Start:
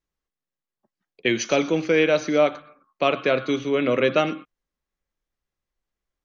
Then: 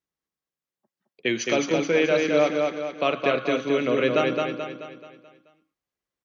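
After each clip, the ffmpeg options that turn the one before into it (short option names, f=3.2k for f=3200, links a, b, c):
-filter_complex "[0:a]highpass=100,asplit=2[a][b];[b]aecho=0:1:216|432|648|864|1080|1296:0.668|0.314|0.148|0.0694|0.0326|0.0153[c];[a][c]amix=inputs=2:normalize=0,volume=-3dB"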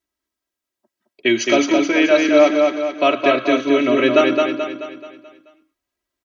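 -af "aecho=1:1:3.1:0.94,volume=4.5dB"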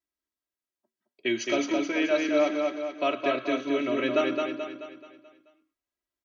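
-af "flanger=delay=5.6:depth=1.8:regen=-85:speed=0.79:shape=triangular,volume=-6.5dB"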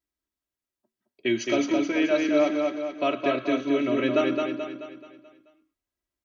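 -af "lowshelf=f=230:g=10"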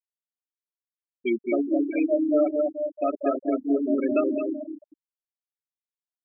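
-filter_complex "[0:a]asplit=2[a][b];[b]adelay=191,lowpass=f=1.9k:p=1,volume=-9.5dB,asplit=2[c][d];[d]adelay=191,lowpass=f=1.9k:p=1,volume=0.38,asplit=2[e][f];[f]adelay=191,lowpass=f=1.9k:p=1,volume=0.38,asplit=2[g][h];[h]adelay=191,lowpass=f=1.9k:p=1,volume=0.38[i];[a][c][e][g][i]amix=inputs=5:normalize=0,afftfilt=real='re*gte(hypot(re,im),0.178)':imag='im*gte(hypot(re,im),0.178)':win_size=1024:overlap=0.75"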